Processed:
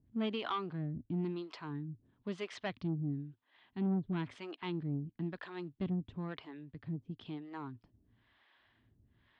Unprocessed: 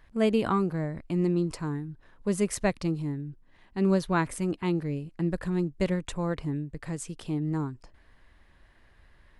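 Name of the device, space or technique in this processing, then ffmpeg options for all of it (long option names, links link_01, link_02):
guitar amplifier with harmonic tremolo: -filter_complex "[0:a]acrossover=split=430[link_01][link_02];[link_01]aeval=exprs='val(0)*(1-1/2+1/2*cos(2*PI*1*n/s))':channel_layout=same[link_03];[link_02]aeval=exprs='val(0)*(1-1/2-1/2*cos(2*PI*1*n/s))':channel_layout=same[link_04];[link_03][link_04]amix=inputs=2:normalize=0,asoftclip=type=tanh:threshold=-25.5dB,highpass=88,equalizer=frequency=110:width_type=q:width=4:gain=8,equalizer=frequency=250:width_type=q:width=4:gain=6,equalizer=frequency=520:width_type=q:width=4:gain=-8,equalizer=frequency=3300:width_type=q:width=4:gain=8,lowpass=frequency=4300:width=0.5412,lowpass=frequency=4300:width=1.3066,volume=-3.5dB"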